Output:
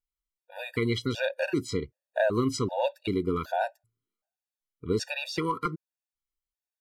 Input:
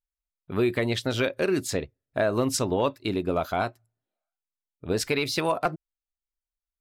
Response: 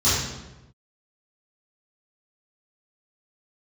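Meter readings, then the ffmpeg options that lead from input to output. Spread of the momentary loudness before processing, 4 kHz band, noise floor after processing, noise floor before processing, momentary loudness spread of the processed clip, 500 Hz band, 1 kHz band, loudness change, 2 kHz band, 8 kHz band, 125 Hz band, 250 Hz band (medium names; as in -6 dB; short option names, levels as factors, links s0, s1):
8 LU, -4.5 dB, under -85 dBFS, under -85 dBFS, 8 LU, -3.0 dB, -2.5 dB, -3.0 dB, -2.5 dB, -8.5 dB, -2.0 dB, -2.5 dB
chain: -filter_complex "[0:a]acrossover=split=6900[s0][s1];[s1]acompressor=threshold=0.00251:ratio=4:attack=1:release=60[s2];[s0][s2]amix=inputs=2:normalize=0,afftfilt=real='re*gt(sin(2*PI*1.3*pts/sr)*(1-2*mod(floor(b*sr/1024/480),2)),0)':imag='im*gt(sin(2*PI*1.3*pts/sr)*(1-2*mod(floor(b*sr/1024/480),2)),0)':win_size=1024:overlap=0.75"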